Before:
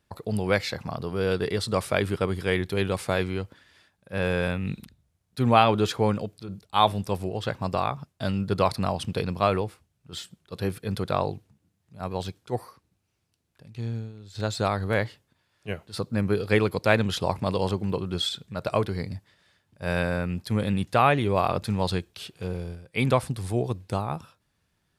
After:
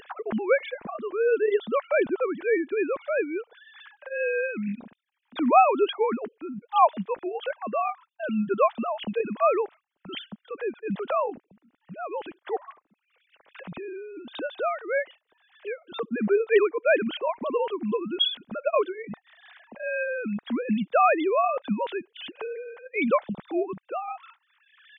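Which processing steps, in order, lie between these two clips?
formants replaced by sine waves; upward compressor, threshold -29 dBFS

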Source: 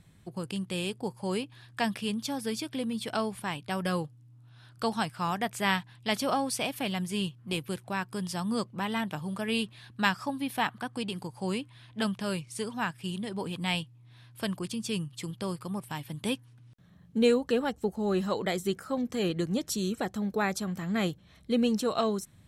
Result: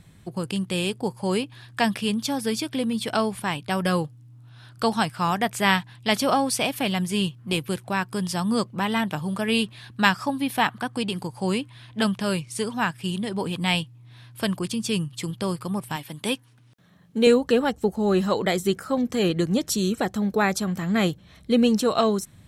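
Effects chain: 15.96–17.27 s: high-pass 310 Hz 6 dB/octave; trim +7 dB

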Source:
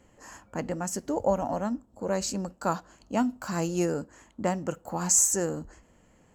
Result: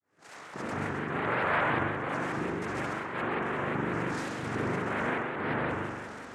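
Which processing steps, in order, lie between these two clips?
fade-in on the opening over 1.58 s; peaking EQ 670 Hz +4 dB 1.4 oct; peak limiter -39.5 dBFS, peak gain reduction 29 dB; multi-head delay 66 ms, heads first and second, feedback 60%, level -7 dB; LFO low-pass sine 0.51 Hz 750–2300 Hz; noise-vocoded speech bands 3; spring tank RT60 1.3 s, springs 41 ms, chirp 55 ms, DRR -4 dB; vibrato with a chosen wave saw up 5.6 Hz, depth 160 cents; trim +6.5 dB

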